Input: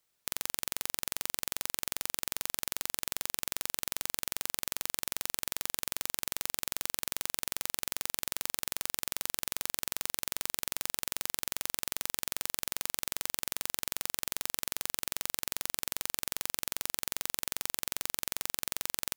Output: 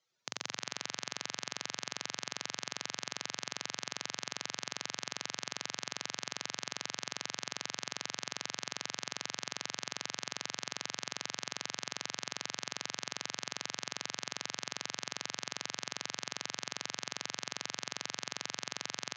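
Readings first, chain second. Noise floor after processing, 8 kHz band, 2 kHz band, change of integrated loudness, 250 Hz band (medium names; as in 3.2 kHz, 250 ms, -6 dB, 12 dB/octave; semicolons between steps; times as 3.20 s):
-57 dBFS, -6.0 dB, 0.0 dB, -6.0 dB, -0.5 dB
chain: spectral contrast enhancement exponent 2.4; Chebyshev band-pass 110–6600 Hz, order 5; band-passed feedback delay 81 ms, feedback 81%, band-pass 1.8 kHz, level -12 dB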